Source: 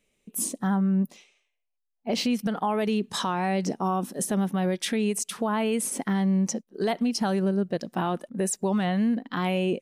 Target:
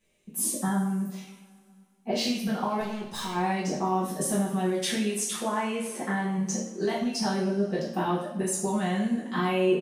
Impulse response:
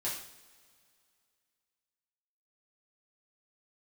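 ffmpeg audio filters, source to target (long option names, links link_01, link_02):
-filter_complex "[0:a]asplit=3[link_01][link_02][link_03];[link_01]afade=type=out:start_time=5.37:duration=0.02[link_04];[link_02]bass=frequency=250:gain=-8,treble=frequency=4000:gain=-13,afade=type=in:start_time=5.37:duration=0.02,afade=type=out:start_time=6.37:duration=0.02[link_05];[link_03]afade=type=in:start_time=6.37:duration=0.02[link_06];[link_04][link_05][link_06]amix=inputs=3:normalize=0,acompressor=threshold=-27dB:ratio=3,asettb=1/sr,asplit=3[link_07][link_08][link_09];[link_07]atrim=end=2.804[link_10];[link_08]atrim=start=2.8:end=3.35,asetpts=PTS-STARTPTS,afade=type=in:duration=0.004:curve=qsin,afade=type=out:start_time=0.546:duration=0.004:curve=qsin,aeval=exprs='(tanh(50.1*val(0)+0.4)-tanh(0.4))/50.1':channel_layout=same[link_11];[link_09]atrim=start=3.346[link_12];[link_10][link_11]acrossfade=duration=0.004:curve1=hsin:curve2=qsin[link_13];[link_13][link_12]acrossfade=duration=0.004:curve1=qsin:curve2=hsin,asplit=2[link_14][link_15];[link_15]adelay=13,volume=-12dB[link_16];[link_14][link_16]amix=inputs=2:normalize=0[link_17];[1:a]atrim=start_sample=2205[link_18];[link_17][link_18]afir=irnorm=-1:irlink=0"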